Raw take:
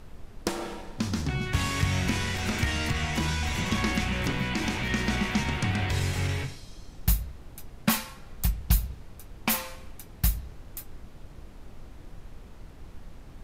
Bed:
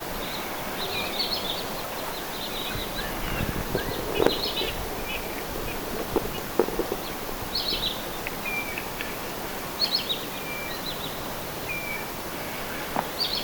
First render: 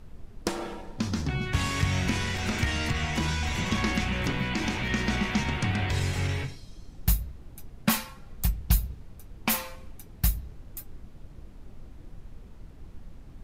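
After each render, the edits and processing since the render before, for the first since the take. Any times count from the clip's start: denoiser 6 dB, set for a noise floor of -47 dBFS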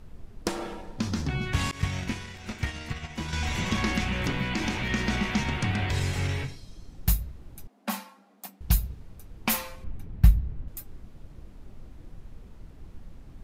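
1.71–3.33 expander -22 dBFS; 7.67–8.61 rippled Chebyshev high-pass 190 Hz, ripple 9 dB; 9.84–10.68 tone controls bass +9 dB, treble -13 dB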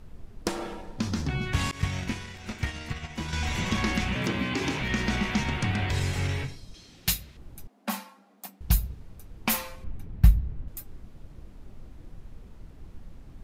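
4.15–4.8 frequency shift +62 Hz; 6.74–7.37 weighting filter D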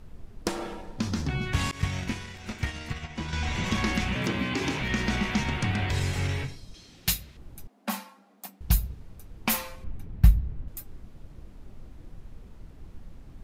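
3.04–3.64 air absorption 52 m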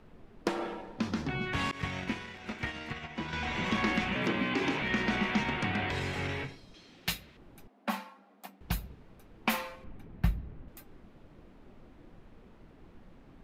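three-band isolator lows -13 dB, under 180 Hz, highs -13 dB, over 3700 Hz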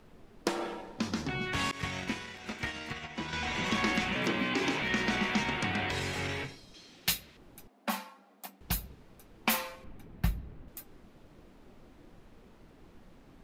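tone controls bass -2 dB, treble +8 dB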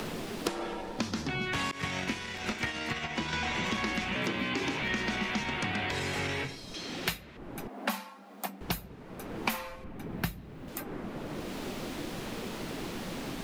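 three-band squash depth 100%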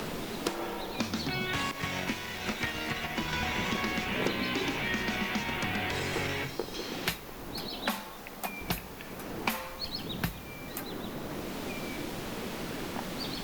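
add bed -13 dB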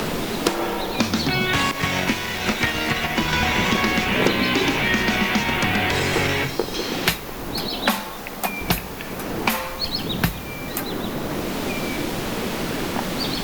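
gain +11.5 dB; limiter -1 dBFS, peak gain reduction 2.5 dB

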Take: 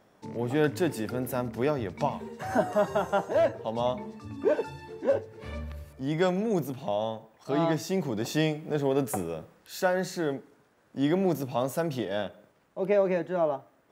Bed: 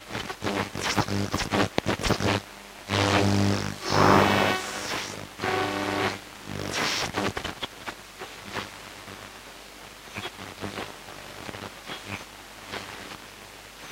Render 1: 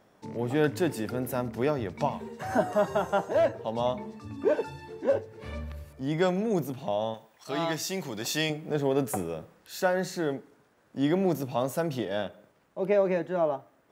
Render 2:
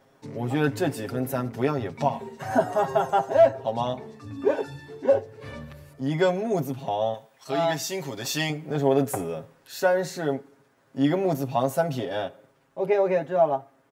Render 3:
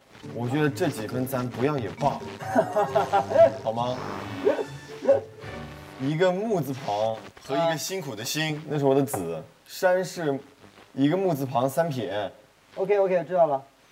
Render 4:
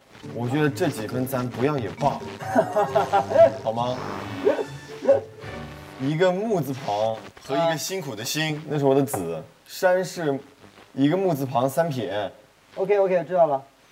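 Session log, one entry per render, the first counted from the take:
7.14–8.5 tilt shelf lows -6.5 dB, about 1200 Hz
dynamic EQ 730 Hz, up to +6 dB, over -42 dBFS, Q 3.4; comb 7.4 ms, depth 78%
add bed -16.5 dB
gain +2 dB

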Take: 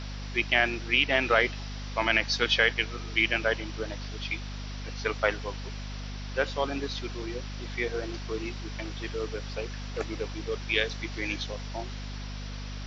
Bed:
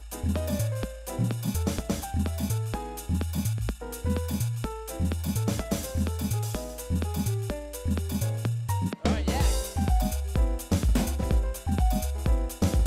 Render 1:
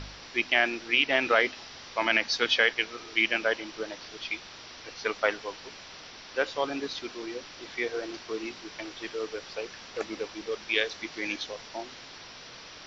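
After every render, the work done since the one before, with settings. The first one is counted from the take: de-hum 50 Hz, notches 5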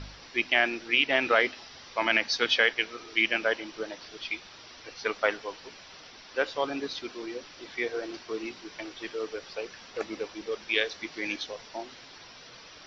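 denoiser 6 dB, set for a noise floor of -47 dBFS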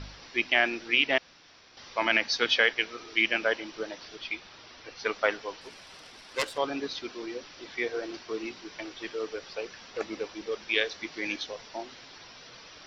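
1.18–1.77 room tone; 4.16–5 high shelf 5900 Hz -7 dB; 5.61–6.58 self-modulated delay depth 0.47 ms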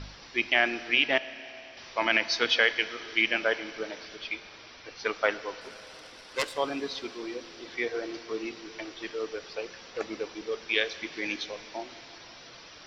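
Schroeder reverb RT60 3.6 s, combs from 26 ms, DRR 14.5 dB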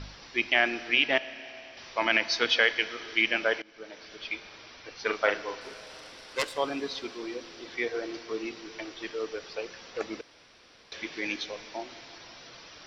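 3.62–4.32 fade in, from -22.5 dB; 5.03–6.34 doubler 40 ms -5.5 dB; 10.21–10.92 room tone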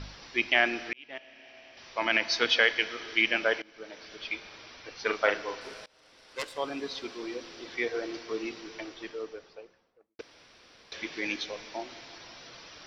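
0.93–2.35 fade in; 5.86–7.65 fade in equal-power, from -24 dB; 8.54–10.19 studio fade out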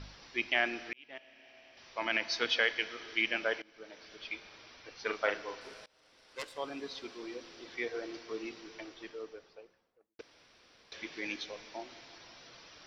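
gain -6 dB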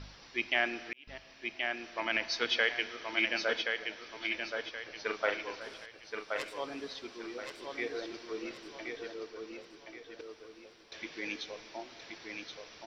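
feedback echo 1.075 s, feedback 35%, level -5 dB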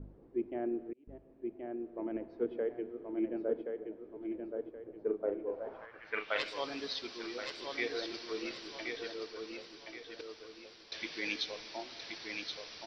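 low-pass sweep 380 Hz -> 4700 Hz, 5.4–6.48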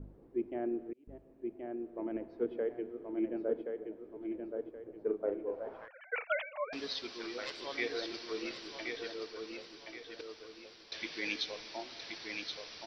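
5.88–6.73 sine-wave speech

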